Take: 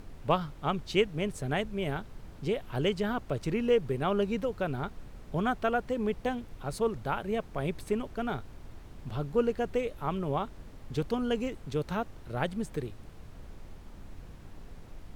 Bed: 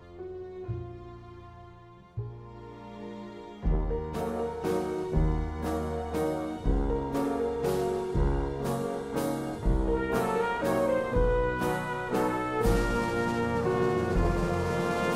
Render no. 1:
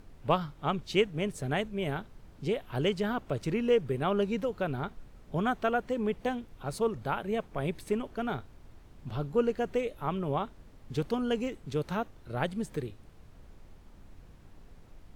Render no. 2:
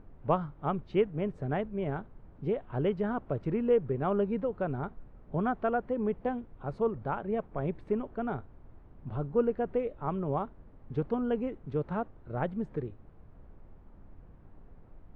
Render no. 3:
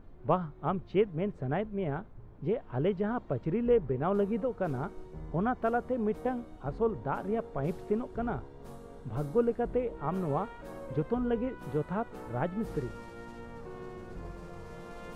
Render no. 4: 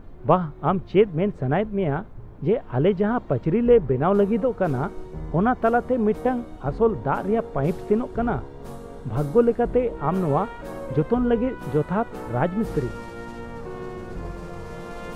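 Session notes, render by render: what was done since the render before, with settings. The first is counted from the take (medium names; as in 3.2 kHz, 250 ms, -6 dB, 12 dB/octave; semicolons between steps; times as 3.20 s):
noise print and reduce 6 dB
low-pass 1.3 kHz 12 dB/octave
add bed -17.5 dB
trim +9.5 dB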